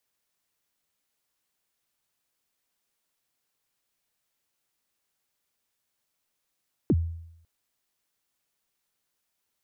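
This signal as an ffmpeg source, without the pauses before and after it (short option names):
-f lavfi -i "aevalsrc='0.158*pow(10,-3*t/0.77)*sin(2*PI*(400*0.046/log(83/400)*(exp(log(83/400)*min(t,0.046)/0.046)-1)+83*max(t-0.046,0)))':d=0.55:s=44100"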